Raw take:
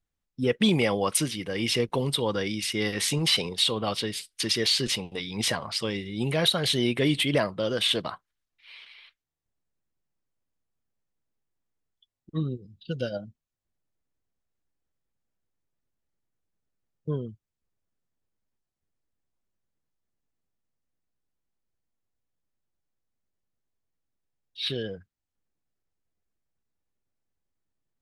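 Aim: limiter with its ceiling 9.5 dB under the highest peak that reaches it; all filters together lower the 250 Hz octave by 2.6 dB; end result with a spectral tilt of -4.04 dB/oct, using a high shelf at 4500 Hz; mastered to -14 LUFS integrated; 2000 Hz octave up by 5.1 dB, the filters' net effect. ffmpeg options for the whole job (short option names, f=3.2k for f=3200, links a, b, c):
-af "equalizer=f=250:t=o:g=-3.5,equalizer=f=2k:t=o:g=7.5,highshelf=f=4.5k:g=-7,volume=16dB,alimiter=limit=-3.5dB:level=0:latency=1"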